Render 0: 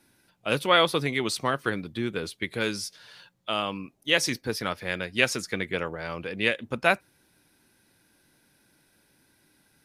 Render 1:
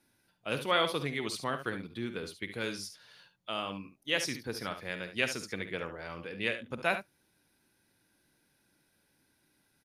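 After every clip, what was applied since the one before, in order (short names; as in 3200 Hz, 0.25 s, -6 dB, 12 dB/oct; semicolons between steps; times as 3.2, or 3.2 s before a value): notch 7800 Hz, Q 14; early reflections 51 ms -13.5 dB, 71 ms -10.5 dB; gain -8 dB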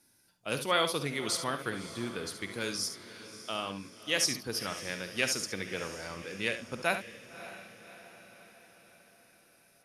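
band shelf 7700 Hz +9 dB; diffused feedback echo 0.587 s, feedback 54%, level -14 dB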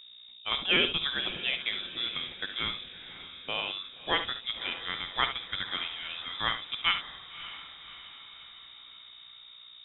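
buzz 60 Hz, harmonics 21, -55 dBFS -7 dB/oct; inverted band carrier 3700 Hz; gain +2.5 dB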